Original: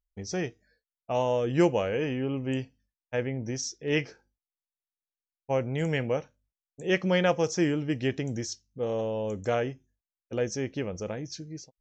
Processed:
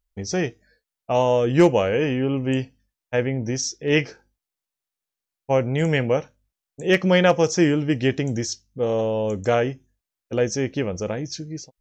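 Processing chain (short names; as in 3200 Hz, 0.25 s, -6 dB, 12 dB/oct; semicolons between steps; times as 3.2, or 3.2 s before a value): hard clip -14.5 dBFS, distortion -33 dB; gain +7.5 dB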